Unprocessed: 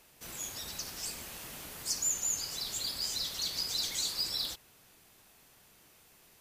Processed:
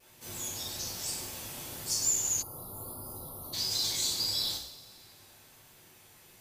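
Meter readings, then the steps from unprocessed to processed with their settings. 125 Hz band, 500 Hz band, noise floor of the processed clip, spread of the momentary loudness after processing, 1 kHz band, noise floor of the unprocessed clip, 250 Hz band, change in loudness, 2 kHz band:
+6.5 dB, +4.0 dB, -58 dBFS, 14 LU, +2.5 dB, -62 dBFS, +4.0 dB, +2.0 dB, -1.0 dB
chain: two-slope reverb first 0.58 s, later 2.1 s, from -17 dB, DRR -8.5 dB; dynamic bell 1.8 kHz, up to -5 dB, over -53 dBFS, Q 1; vibrato 1.1 Hz 26 cents; time-frequency box 2.42–3.53 s, 1.4–9.3 kHz -29 dB; trim -5 dB

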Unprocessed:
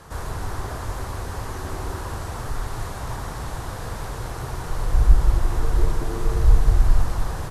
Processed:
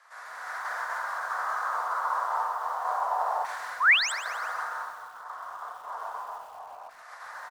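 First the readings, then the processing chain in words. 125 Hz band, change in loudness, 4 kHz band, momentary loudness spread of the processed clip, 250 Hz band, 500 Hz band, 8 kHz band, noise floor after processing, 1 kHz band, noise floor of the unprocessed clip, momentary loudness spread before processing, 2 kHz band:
under -40 dB, -2.5 dB, +6.0 dB, 19 LU, under -30 dB, -7.0 dB, -4.0 dB, -47 dBFS, +5.5 dB, -33 dBFS, 12 LU, +10.5 dB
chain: peaking EQ 2.7 kHz -14.5 dB 1 oct; level rider gain up to 16.5 dB; band-stop 860 Hz, Q 12; on a send: multi-tap echo 54/145/234/277/675 ms -6.5/-10/-13/-12.5/-18 dB; on the sum: FDN reverb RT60 1.7 s, low-frequency decay 1.5×, high-frequency decay 0.45×, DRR 3.5 dB; painted sound rise, 3.80–4.12 s, 940–8600 Hz -6 dBFS; reverse; compression 16:1, threshold -14 dBFS, peak gain reduction 13.5 dB; reverse; steep high-pass 600 Hz 36 dB/octave; LFO band-pass saw down 0.29 Hz 790–2200 Hz; bit-crushed delay 127 ms, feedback 55%, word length 8-bit, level -13 dB; trim +3 dB

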